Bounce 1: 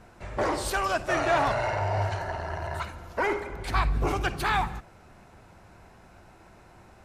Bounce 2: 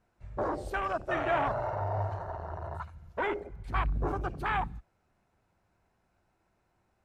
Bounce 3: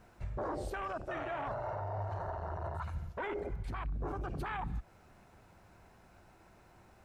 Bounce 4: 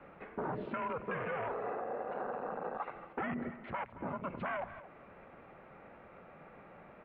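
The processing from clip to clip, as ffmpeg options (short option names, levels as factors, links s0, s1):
-af "afwtdn=0.0355,volume=0.596"
-af "areverse,acompressor=threshold=0.0112:ratio=10,areverse,alimiter=level_in=9.44:limit=0.0631:level=0:latency=1:release=131,volume=0.106,volume=4.47"
-filter_complex "[0:a]acrossover=split=270|1400[s0][s1][s2];[s0]acompressor=threshold=0.00251:ratio=4[s3];[s1]acompressor=threshold=0.00398:ratio=4[s4];[s2]acompressor=threshold=0.00355:ratio=4[s5];[s3][s4][s5]amix=inputs=3:normalize=0,highpass=f=280:t=q:w=0.5412,highpass=f=280:t=q:w=1.307,lowpass=f=2900:t=q:w=0.5176,lowpass=f=2900:t=q:w=0.7071,lowpass=f=2900:t=q:w=1.932,afreqshift=-170,asplit=2[s6][s7];[s7]adelay=221.6,volume=0.178,highshelf=f=4000:g=-4.99[s8];[s6][s8]amix=inputs=2:normalize=0,volume=2.66"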